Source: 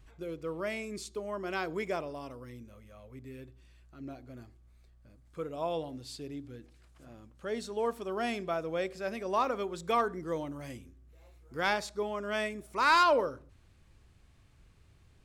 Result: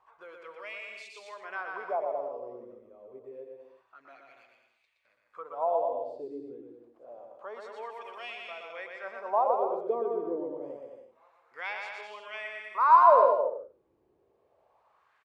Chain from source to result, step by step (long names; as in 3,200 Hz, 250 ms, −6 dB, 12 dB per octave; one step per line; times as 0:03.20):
flat-topped bell 670 Hz +10 dB
LFO wah 0.27 Hz 330–2,700 Hz, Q 3.9
bouncing-ball delay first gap 120 ms, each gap 0.75×, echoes 5
one half of a high-frequency compander encoder only